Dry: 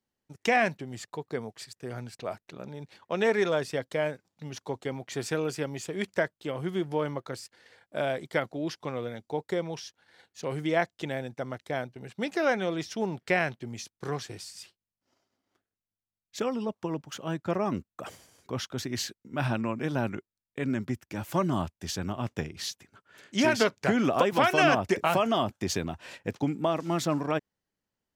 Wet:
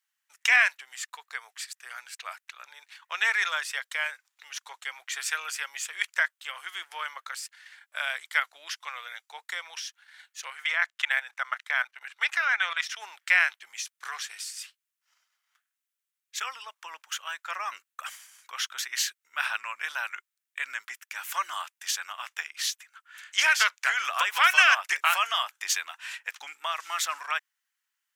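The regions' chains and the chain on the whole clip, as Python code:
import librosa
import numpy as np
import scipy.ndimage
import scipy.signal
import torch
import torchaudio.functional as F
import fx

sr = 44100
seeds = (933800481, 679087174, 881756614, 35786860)

y = fx.chain(x, sr, fx.peak_eq(hz=1400.0, db=10.5, octaves=2.8),
    fx.level_steps(step_db=14), at=(10.5, 12.96))
y = scipy.signal.sosfilt(scipy.signal.butter(4, 1300.0, 'highpass', fs=sr, output='sos'), y)
y = fx.peak_eq(y, sr, hz=4600.0, db=-5.5, octaves=0.62)
y = F.gain(torch.from_numpy(y), 9.0).numpy()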